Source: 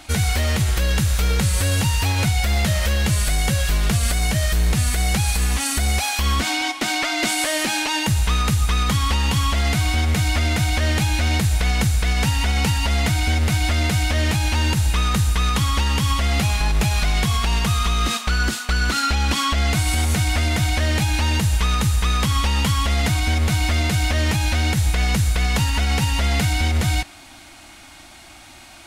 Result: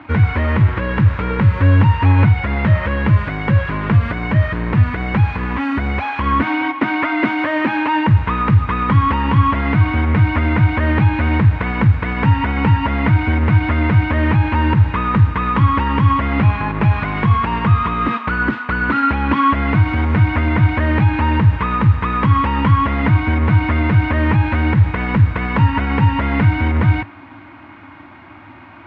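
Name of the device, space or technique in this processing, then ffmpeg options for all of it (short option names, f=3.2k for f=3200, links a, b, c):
bass cabinet: -af "highpass=f=85:w=0.5412,highpass=f=85:w=1.3066,equalizer=f=100:t=q:w=4:g=8,equalizer=f=280:t=q:w=4:g=7,equalizer=f=730:t=q:w=4:g=-7,equalizer=f=1k:t=q:w=4:g=8,lowpass=f=2.1k:w=0.5412,lowpass=f=2.1k:w=1.3066,volume=5.5dB"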